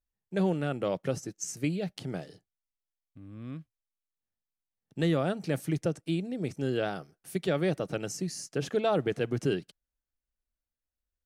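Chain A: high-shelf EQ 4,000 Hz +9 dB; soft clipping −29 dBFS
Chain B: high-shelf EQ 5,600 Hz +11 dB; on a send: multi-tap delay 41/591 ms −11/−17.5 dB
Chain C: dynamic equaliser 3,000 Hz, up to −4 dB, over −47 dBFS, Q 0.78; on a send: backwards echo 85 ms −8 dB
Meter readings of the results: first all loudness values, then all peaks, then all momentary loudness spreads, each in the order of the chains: −36.0, −30.5, −31.5 LKFS; −29.0, −14.0, −15.0 dBFS; 10, 17, 13 LU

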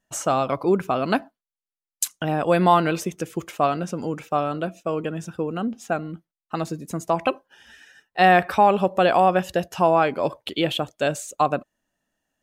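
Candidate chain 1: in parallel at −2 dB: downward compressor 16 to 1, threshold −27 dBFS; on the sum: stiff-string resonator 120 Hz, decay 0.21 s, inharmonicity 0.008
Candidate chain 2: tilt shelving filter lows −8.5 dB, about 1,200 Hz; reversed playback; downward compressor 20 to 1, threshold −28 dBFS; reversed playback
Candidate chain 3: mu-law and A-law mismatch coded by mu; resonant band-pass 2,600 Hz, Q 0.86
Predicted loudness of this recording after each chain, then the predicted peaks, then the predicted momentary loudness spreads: −29.0, −33.5, −30.0 LKFS; −10.0, −13.5, −8.0 dBFS; 15, 5, 15 LU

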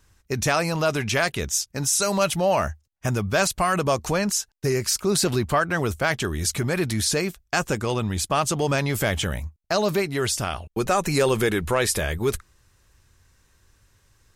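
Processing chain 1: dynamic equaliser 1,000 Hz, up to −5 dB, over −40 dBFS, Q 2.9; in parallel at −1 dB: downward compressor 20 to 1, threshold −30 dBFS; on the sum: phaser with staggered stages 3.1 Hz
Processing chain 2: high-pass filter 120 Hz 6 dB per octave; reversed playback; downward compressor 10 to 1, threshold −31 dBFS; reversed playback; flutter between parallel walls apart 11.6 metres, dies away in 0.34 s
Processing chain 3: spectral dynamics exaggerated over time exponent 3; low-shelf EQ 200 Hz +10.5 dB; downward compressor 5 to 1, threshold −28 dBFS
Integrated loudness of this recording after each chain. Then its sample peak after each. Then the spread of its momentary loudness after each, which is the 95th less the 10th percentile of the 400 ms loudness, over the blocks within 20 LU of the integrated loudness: −25.0, −34.5, −33.0 LKFS; −6.5, −19.5, −18.5 dBFS; 6, 4, 5 LU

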